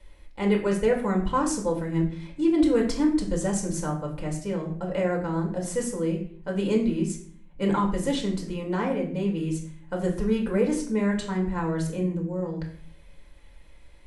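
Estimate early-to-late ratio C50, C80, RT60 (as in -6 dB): 8.5 dB, 11.5 dB, 0.55 s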